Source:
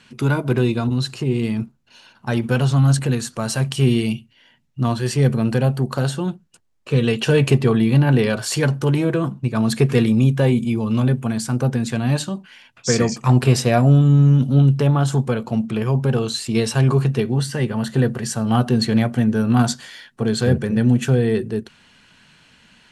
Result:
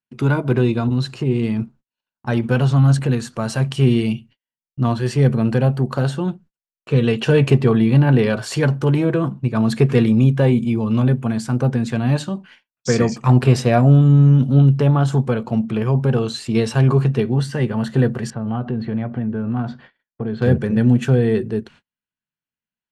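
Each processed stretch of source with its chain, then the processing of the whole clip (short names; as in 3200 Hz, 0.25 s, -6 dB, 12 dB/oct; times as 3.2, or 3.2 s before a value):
18.3–20.42 compressor 2.5:1, threshold -22 dBFS + air absorption 370 m + mismatched tape noise reduction decoder only
whole clip: high shelf 3400 Hz -7 dB; gate -44 dBFS, range -43 dB; high shelf 9100 Hz -6 dB; gain +1.5 dB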